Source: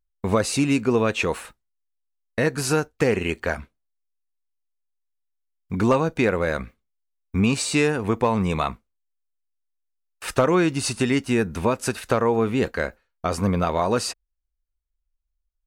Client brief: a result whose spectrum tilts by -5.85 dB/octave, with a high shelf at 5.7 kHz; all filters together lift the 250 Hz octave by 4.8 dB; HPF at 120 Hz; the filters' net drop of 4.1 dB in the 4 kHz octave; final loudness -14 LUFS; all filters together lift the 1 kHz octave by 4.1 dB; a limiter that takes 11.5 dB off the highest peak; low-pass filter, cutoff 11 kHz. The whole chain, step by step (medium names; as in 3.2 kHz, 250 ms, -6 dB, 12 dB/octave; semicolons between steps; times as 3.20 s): high-pass 120 Hz; low-pass 11 kHz; peaking EQ 250 Hz +6 dB; peaking EQ 1 kHz +5 dB; peaking EQ 4 kHz -3.5 dB; treble shelf 5.7 kHz -5 dB; trim +10.5 dB; peak limiter -2 dBFS